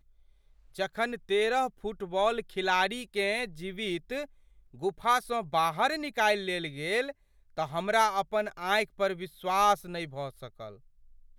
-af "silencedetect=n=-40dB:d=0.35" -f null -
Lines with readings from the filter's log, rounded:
silence_start: 0.00
silence_end: 0.76 | silence_duration: 0.76
silence_start: 4.25
silence_end: 4.75 | silence_duration: 0.50
silence_start: 7.11
silence_end: 7.58 | silence_duration: 0.46
silence_start: 10.70
silence_end: 11.39 | silence_duration: 0.68